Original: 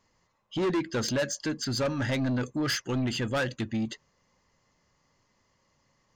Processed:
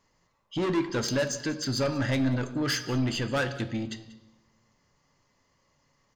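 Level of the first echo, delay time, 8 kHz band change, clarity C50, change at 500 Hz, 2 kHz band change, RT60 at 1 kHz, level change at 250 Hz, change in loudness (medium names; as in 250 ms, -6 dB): -19.0 dB, 188 ms, +0.5 dB, 11.5 dB, +0.5 dB, +0.5 dB, 0.90 s, +1.0 dB, +1.0 dB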